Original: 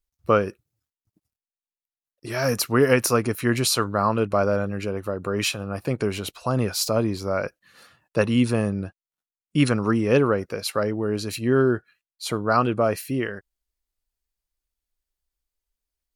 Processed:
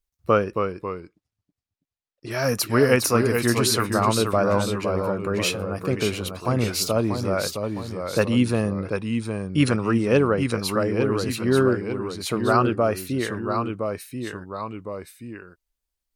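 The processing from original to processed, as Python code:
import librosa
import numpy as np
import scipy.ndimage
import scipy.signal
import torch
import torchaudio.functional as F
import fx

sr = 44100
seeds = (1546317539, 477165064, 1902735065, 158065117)

y = fx.lowpass(x, sr, hz=6000.0, slope=12, at=(0.44, 2.31))
y = fx.echo_pitch(y, sr, ms=254, semitones=-1, count=2, db_per_echo=-6.0)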